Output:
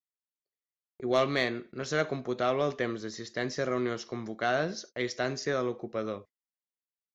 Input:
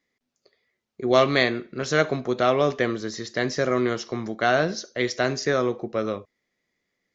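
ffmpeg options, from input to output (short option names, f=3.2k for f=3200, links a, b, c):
-af "agate=range=-29dB:threshold=-41dB:ratio=16:detection=peak,aeval=exprs='0.668*(cos(1*acos(clip(val(0)/0.668,-1,1)))-cos(1*PI/2))+0.0237*(cos(5*acos(clip(val(0)/0.668,-1,1)))-cos(5*PI/2))':c=same,volume=-8.5dB"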